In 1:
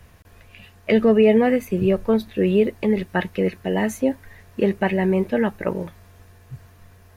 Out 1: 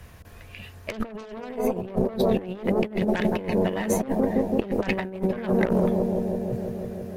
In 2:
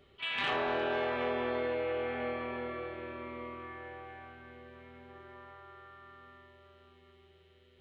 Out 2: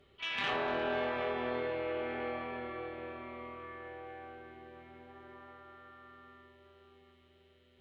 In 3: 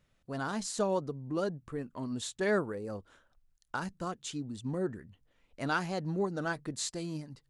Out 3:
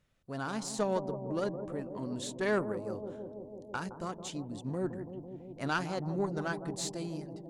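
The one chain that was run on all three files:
harmonic generator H 3 −15 dB, 4 −14 dB, 5 −7 dB, 7 −12 dB, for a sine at −6.5 dBFS
bucket-brigade delay 165 ms, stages 1,024, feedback 81%, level −9.5 dB
compressor whose output falls as the input rises −23 dBFS, ratio −0.5
level −1.5 dB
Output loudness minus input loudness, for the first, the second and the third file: −5.0, −2.0, −1.0 LU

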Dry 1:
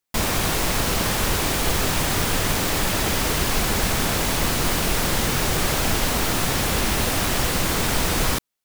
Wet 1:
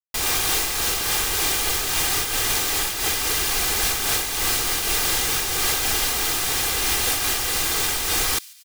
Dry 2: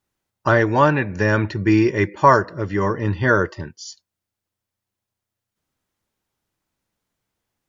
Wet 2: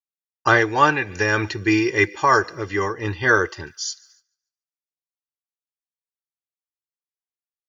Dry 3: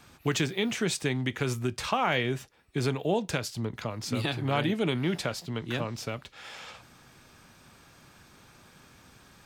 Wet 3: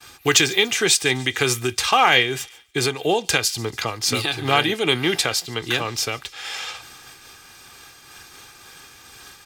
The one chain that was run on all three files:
low-shelf EQ 400 Hz −6.5 dB
comb filter 2.5 ms, depth 49%
delay with a high-pass on its return 144 ms, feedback 60%, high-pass 3,000 Hz, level −21 dB
downward expander −54 dBFS
high-shelf EQ 2,000 Hz +8 dB
amplitude modulation by smooth noise, depth 60%
loudness normalisation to −20 LKFS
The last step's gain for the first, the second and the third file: −2.5, +1.5, +10.5 decibels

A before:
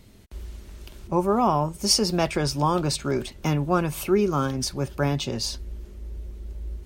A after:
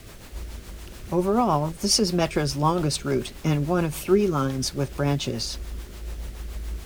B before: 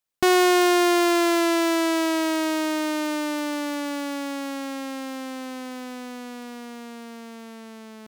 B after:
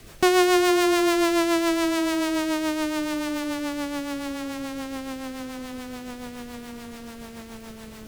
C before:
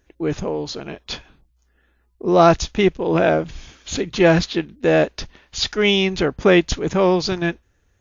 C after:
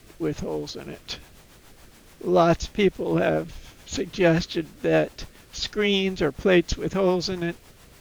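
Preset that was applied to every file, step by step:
background noise pink −45 dBFS
rotating-speaker cabinet horn 7 Hz
loudness normalisation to −24 LKFS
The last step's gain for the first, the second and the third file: +2.5, +1.0, −3.0 decibels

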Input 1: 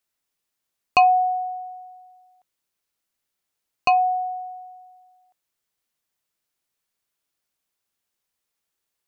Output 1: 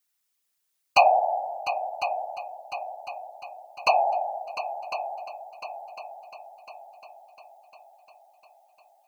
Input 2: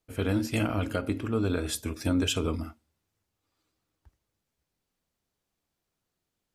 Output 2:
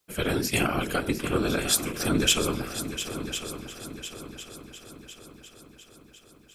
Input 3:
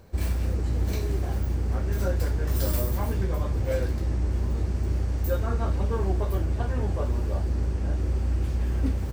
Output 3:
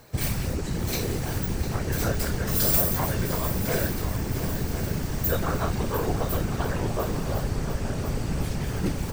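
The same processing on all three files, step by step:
spectral tilt +2 dB per octave
notch filter 550 Hz, Q 14
random phases in short frames
on a send: echo machine with several playback heads 351 ms, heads second and third, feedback 52%, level −11.5 dB
on the sum: loudness normalisation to −27 LKFS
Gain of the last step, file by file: −2.0, +5.0, +5.0 decibels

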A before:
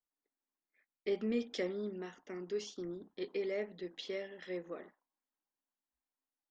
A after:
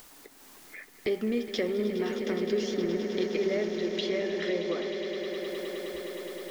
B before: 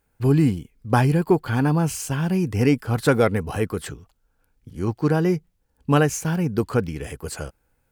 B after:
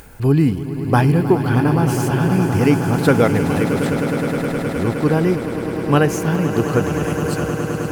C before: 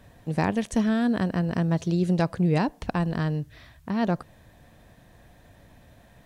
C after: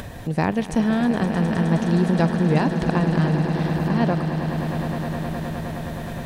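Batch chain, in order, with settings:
upward compression, threshold −26 dBFS
dynamic equaliser 7,400 Hz, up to −6 dB, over −53 dBFS, Q 1.5
echo that builds up and dies away 104 ms, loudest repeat 8, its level −12.5 dB
level +3 dB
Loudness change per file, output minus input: +9.5, +4.0, +4.0 LU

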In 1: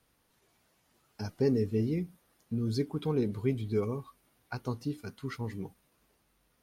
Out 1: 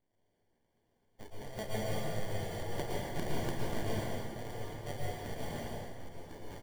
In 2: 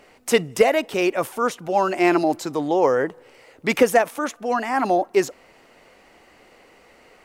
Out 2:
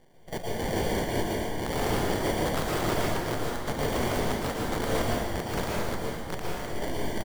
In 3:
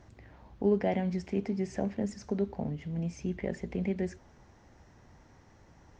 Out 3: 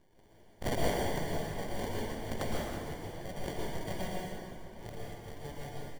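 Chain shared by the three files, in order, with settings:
spectral magnitudes quantised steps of 30 dB
three-way crossover with the lows and the highs turned down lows −18 dB, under 170 Hz, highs −20 dB, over 3,700 Hz
brickwall limiter −14 dBFS
delay with pitch and tempo change per echo 270 ms, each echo −5 semitones, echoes 3, each echo −6 dB
full-wave rectification
gate pattern "xxxx.xxxxx.xx.." 143 BPM −12 dB
sample-rate reduction 1,300 Hz, jitter 0%
slap from a distant wall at 130 metres, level −13 dB
wrap-around overflow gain 21 dB
dense smooth reverb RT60 1.7 s, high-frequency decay 0.8×, pre-delay 100 ms, DRR −4.5 dB
level −5 dB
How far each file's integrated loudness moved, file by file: −6.5, −9.0, −5.0 LU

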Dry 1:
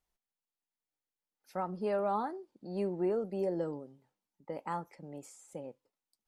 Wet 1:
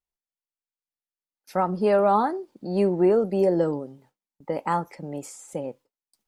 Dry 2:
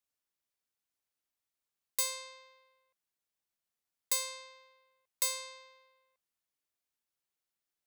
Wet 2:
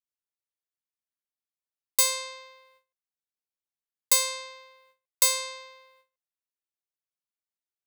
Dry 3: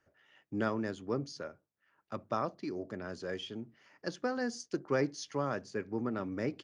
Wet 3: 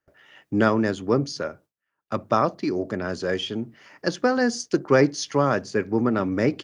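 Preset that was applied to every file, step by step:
noise gate with hold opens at −59 dBFS
loudness normalisation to −24 LKFS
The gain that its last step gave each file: +12.5, +10.5, +13.0 decibels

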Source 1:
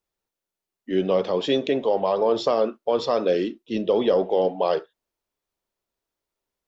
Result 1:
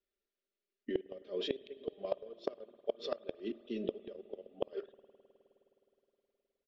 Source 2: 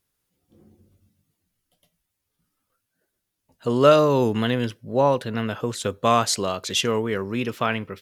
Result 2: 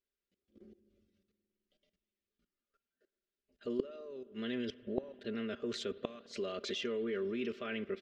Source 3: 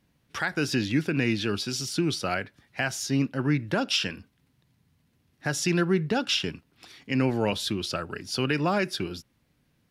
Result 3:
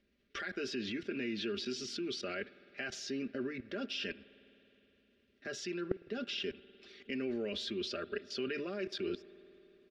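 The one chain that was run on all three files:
low-shelf EQ 64 Hz −7 dB
comb filter 5 ms, depth 67%
output level in coarse steps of 18 dB
phaser with its sweep stopped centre 370 Hz, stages 4
gate with flip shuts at −21 dBFS, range −28 dB
high-frequency loss of the air 190 metres
spring reverb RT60 3.7 s, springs 52 ms, chirp 65 ms, DRR 18.5 dB
level +2.5 dB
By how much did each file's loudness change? −18.5, −17.5, −12.0 LU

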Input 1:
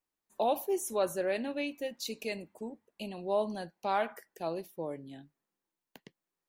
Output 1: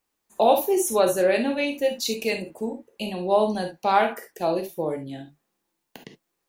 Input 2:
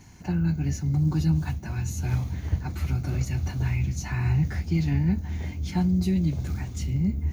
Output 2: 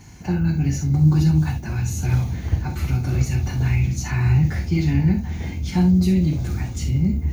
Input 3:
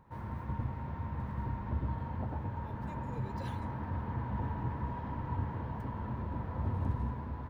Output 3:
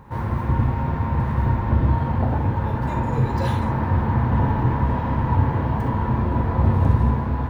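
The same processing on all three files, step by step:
reverb whose tail is shaped and stops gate 90 ms flat, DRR 4 dB
normalise the peak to −6 dBFS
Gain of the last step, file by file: +10.0, +4.5, +15.0 decibels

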